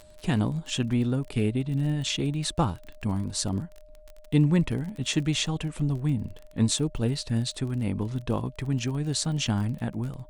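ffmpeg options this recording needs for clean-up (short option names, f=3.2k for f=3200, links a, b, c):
-af "adeclick=t=4,bandreject=f=610:w=30"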